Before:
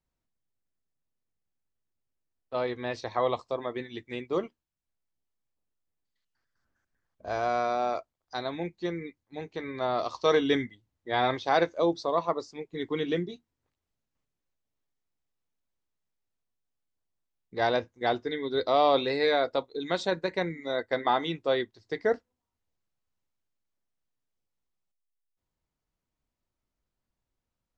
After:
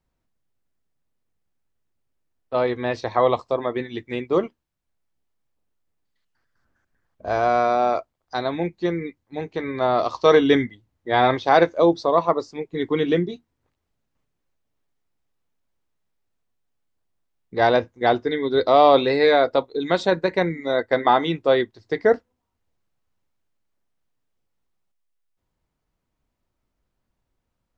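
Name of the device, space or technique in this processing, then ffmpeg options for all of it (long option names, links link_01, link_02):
behind a face mask: -af "highshelf=frequency=3300:gain=-7.5,volume=9dB"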